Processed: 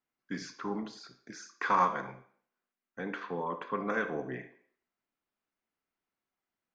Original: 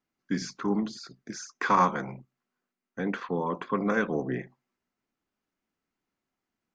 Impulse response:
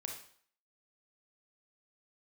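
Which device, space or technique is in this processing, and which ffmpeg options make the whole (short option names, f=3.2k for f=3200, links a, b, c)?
filtered reverb send: -filter_complex "[0:a]asplit=2[a][b];[b]highpass=390,lowpass=4.9k[c];[1:a]atrim=start_sample=2205[d];[c][d]afir=irnorm=-1:irlink=0,volume=1dB[e];[a][e]amix=inputs=2:normalize=0,volume=-8.5dB"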